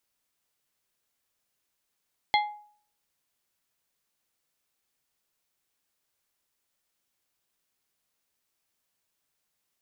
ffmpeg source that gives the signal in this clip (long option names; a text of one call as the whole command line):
ffmpeg -f lavfi -i "aevalsrc='0.119*pow(10,-3*t/0.52)*sin(2*PI*836*t)+0.0841*pow(10,-3*t/0.274)*sin(2*PI*2090*t)+0.0596*pow(10,-3*t/0.197)*sin(2*PI*3344*t)+0.0422*pow(10,-3*t/0.169)*sin(2*PI*4180*t)':duration=0.89:sample_rate=44100" out.wav